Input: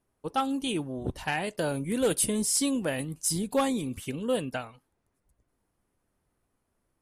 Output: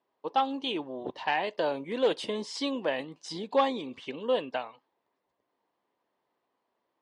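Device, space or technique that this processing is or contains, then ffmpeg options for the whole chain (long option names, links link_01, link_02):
phone earpiece: -af "highpass=420,equalizer=frequency=980:width_type=q:width=4:gain=5,equalizer=frequency=1400:width_type=q:width=4:gain=-8,equalizer=frequency=2400:width_type=q:width=4:gain=-4,lowpass=frequency=4200:width=0.5412,lowpass=frequency=4200:width=1.3066,volume=3dB"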